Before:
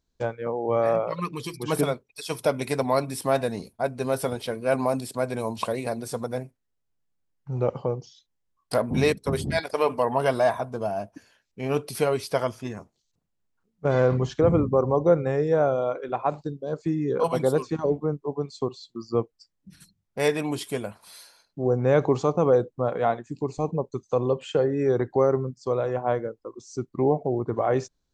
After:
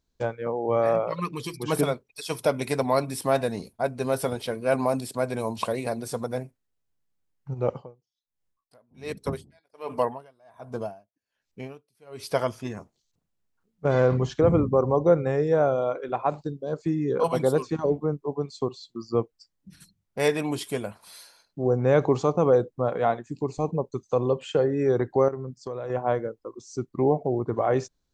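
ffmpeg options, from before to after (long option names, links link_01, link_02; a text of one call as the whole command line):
ffmpeg -i in.wav -filter_complex "[0:a]asplit=3[link_01][link_02][link_03];[link_01]afade=type=out:start_time=7.53:duration=0.02[link_04];[link_02]aeval=exprs='val(0)*pow(10,-38*(0.5-0.5*cos(2*PI*1.3*n/s))/20)':channel_layout=same,afade=type=in:start_time=7.53:duration=0.02,afade=type=out:start_time=12.33:duration=0.02[link_05];[link_03]afade=type=in:start_time=12.33:duration=0.02[link_06];[link_04][link_05][link_06]amix=inputs=3:normalize=0,asettb=1/sr,asplit=3[link_07][link_08][link_09];[link_07]atrim=end=25.284[link_10];[link_08]atrim=start=25.28:end=25.9,asetpts=PTS-STARTPTS,afade=type=in:duration=0.004:curve=qsin,afade=type=out:start_time=0.616:duration=0.004:curve=qsin,acompressor=threshold=-29dB:ratio=6:attack=3.2:release=140:knee=1:detection=peak[link_11];[link_09]atrim=start=25.896[link_12];[link_10][link_11]acrossfade=duration=0.004:curve1=hsin:curve2=qsin[link_13];[link_13][link_12]acrossfade=duration=0.004:curve1=qsin:curve2=hsin" out.wav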